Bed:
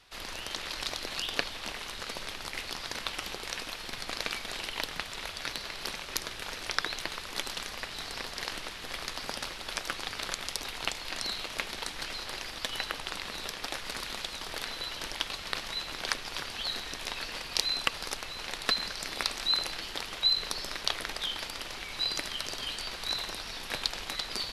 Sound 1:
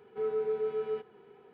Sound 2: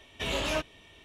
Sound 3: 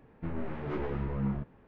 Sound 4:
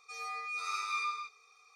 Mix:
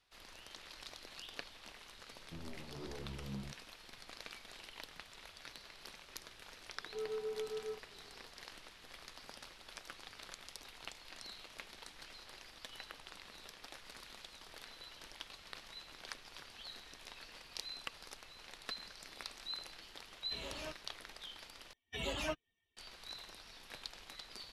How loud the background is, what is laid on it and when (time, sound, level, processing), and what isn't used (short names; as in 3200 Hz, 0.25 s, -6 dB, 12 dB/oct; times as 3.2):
bed -16 dB
2.09 add 3 -13 dB + LPF 1100 Hz
6.77 add 1 -9.5 dB
20.11 add 2 -16 dB
21.73 replace with 2 -5.5 dB + per-bin expansion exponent 2
not used: 4